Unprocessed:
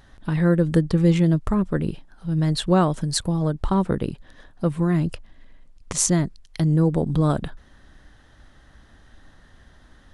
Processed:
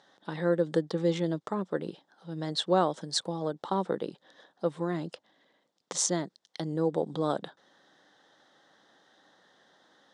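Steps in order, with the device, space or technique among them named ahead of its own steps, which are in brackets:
television speaker (loudspeaker in its box 210–8,100 Hz, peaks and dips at 240 Hz −8 dB, 510 Hz +5 dB, 810 Hz +5 dB, 2,500 Hz −7 dB, 3,600 Hz +7 dB, 5,400 Hz +3 dB)
level −6.5 dB

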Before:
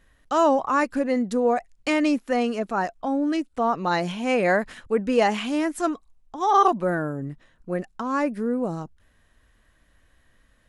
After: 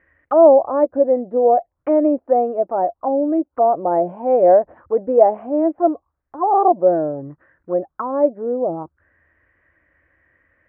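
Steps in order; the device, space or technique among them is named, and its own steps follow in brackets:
envelope filter bass rig (envelope-controlled low-pass 690–2,100 Hz down, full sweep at −23 dBFS; loudspeaker in its box 75–2,300 Hz, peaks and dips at 79 Hz +8 dB, 210 Hz −8 dB, 330 Hz +8 dB, 550 Hz +7 dB)
level −2.5 dB

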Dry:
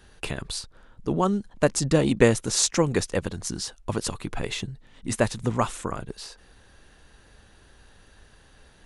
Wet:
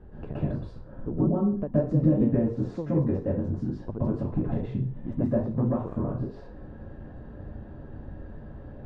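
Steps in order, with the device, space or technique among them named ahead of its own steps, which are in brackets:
television next door (downward compressor 3 to 1, threshold −42 dBFS, peak gain reduction 21.5 dB; low-pass filter 560 Hz 12 dB per octave; convolution reverb RT60 0.40 s, pre-delay 118 ms, DRR −8 dB)
level +7 dB

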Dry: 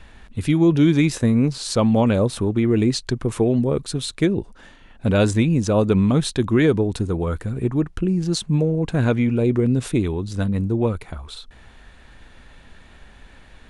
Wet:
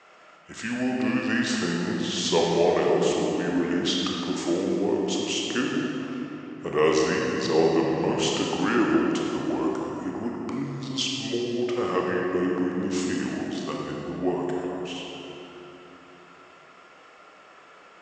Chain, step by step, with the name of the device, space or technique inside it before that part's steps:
slowed and reverbed (speed change −24%; convolution reverb RT60 3.3 s, pre-delay 24 ms, DRR −2 dB)
Chebyshev band-pass filter 450–6,900 Hz, order 2
level −1.5 dB

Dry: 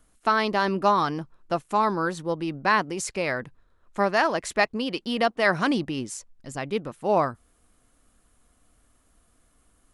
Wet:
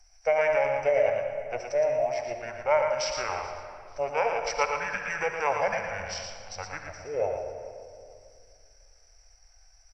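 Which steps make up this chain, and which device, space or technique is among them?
drawn EQ curve 100 Hz 0 dB, 160 Hz −22 dB, 320 Hz −29 dB, 510 Hz −27 dB, 1,100 Hz +2 dB, 1,700 Hz −5 dB, 4,300 Hz +6 dB, 7,100 Hz −16 dB, 11,000 Hz +13 dB
repeating echo 437 ms, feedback 32%, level −20.5 dB
monster voice (pitch shifter −6 semitones; formants moved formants −5 semitones; low-shelf EQ 130 Hz +4 dB; single-tap delay 115 ms −6 dB; convolution reverb RT60 2.2 s, pre-delay 51 ms, DRR 6 dB)

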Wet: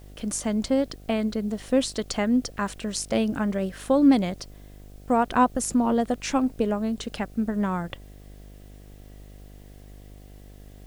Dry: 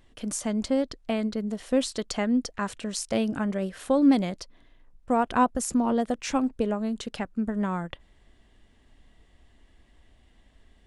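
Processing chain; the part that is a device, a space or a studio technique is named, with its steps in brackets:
video cassette with head-switching buzz (hum with harmonics 50 Hz, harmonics 15, −48 dBFS −6 dB per octave; white noise bed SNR 35 dB)
level +2 dB

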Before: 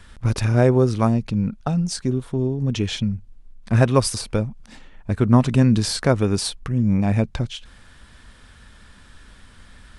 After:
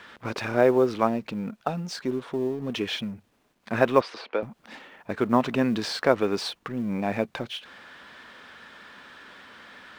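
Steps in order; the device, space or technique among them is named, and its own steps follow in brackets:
phone line with mismatched companding (band-pass filter 360–3,300 Hz; mu-law and A-law mismatch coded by mu)
0:04.01–0:04.43: three-way crossover with the lows and the highs turned down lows −22 dB, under 280 Hz, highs −23 dB, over 4,100 Hz

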